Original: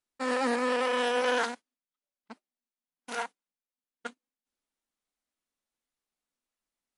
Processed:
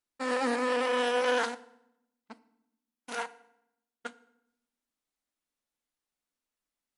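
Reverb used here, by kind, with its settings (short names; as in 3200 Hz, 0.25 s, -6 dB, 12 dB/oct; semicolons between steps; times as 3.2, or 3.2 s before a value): FDN reverb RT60 0.8 s, low-frequency decay 1.5×, high-frequency decay 0.8×, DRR 14.5 dB; gain -1 dB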